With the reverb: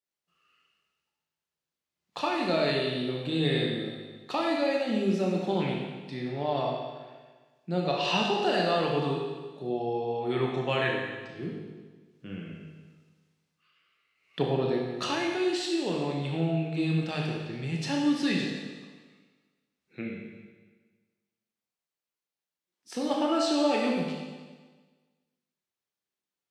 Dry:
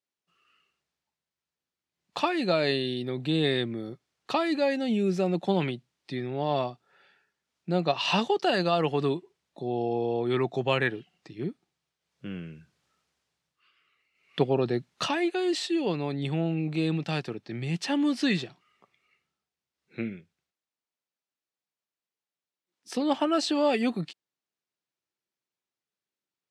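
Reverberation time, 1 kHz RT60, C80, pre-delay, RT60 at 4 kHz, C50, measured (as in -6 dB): 1.4 s, 1.4 s, 3.0 dB, 19 ms, 1.4 s, 1.0 dB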